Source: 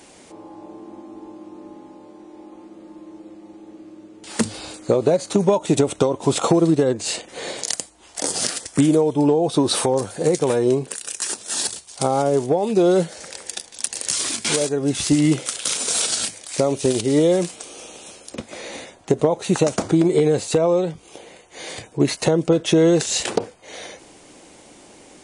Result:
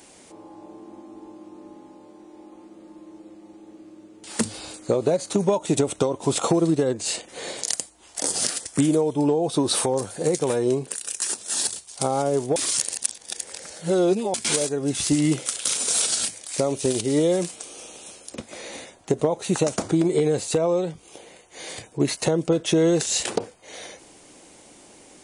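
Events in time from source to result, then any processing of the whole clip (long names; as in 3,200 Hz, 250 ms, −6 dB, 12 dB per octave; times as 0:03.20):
0:12.56–0:14.34: reverse
whole clip: high-shelf EQ 8,500 Hz +8 dB; level −4 dB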